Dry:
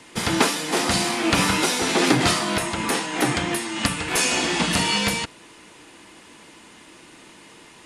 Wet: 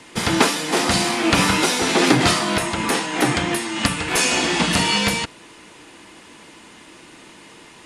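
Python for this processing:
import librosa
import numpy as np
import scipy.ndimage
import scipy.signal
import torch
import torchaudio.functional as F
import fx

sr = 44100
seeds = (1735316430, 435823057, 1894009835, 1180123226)

y = fx.high_shelf(x, sr, hz=10000.0, db=-4.0)
y = F.gain(torch.from_numpy(y), 3.0).numpy()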